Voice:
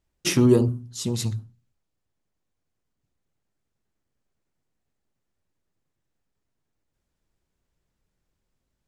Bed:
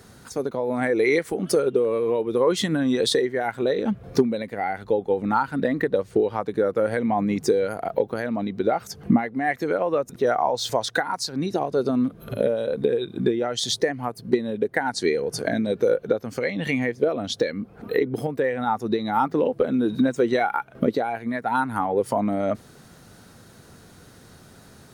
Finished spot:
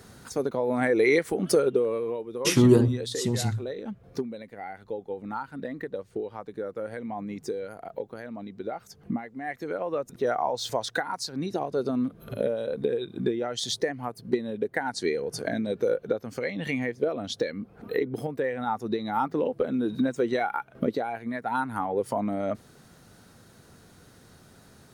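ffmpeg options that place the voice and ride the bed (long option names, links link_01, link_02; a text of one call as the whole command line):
ffmpeg -i stem1.wav -i stem2.wav -filter_complex "[0:a]adelay=2200,volume=-0.5dB[link_01];[1:a]volume=6dB,afade=type=out:start_time=1.61:duration=0.65:silence=0.281838,afade=type=in:start_time=9.32:duration=0.9:silence=0.446684[link_02];[link_01][link_02]amix=inputs=2:normalize=0" out.wav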